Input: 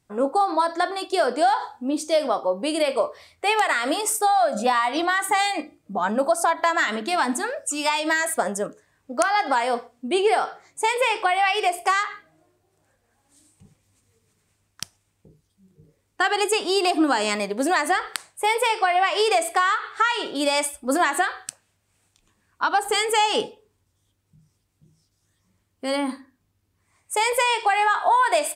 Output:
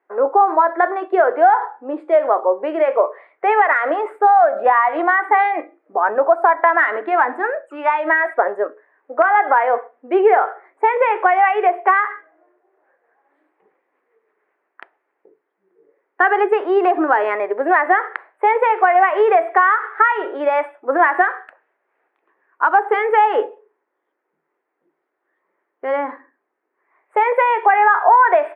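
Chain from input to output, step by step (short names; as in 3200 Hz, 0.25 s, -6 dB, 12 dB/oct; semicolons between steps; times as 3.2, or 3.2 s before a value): elliptic band-pass 370–1900 Hz, stop band 50 dB; gain +7.5 dB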